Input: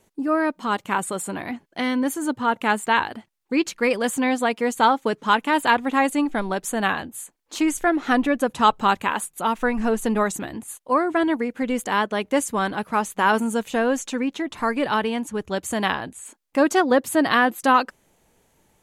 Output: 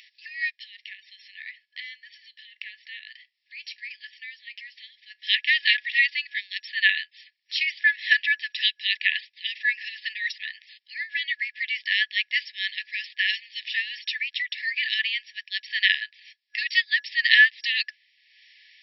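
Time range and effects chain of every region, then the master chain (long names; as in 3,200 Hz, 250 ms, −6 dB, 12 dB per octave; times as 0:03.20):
0:00.58–0:05.23: downward compressor, threshold −34 dBFS + tuned comb filter 64 Hz, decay 0.19 s, mix 40%
whole clip: brick-wall band-pass 1,700–5,600 Hz; upward compression, threshold −52 dBFS; level +8.5 dB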